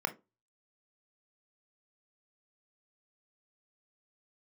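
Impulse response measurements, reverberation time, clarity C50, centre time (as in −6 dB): 0.25 s, 18.0 dB, 5 ms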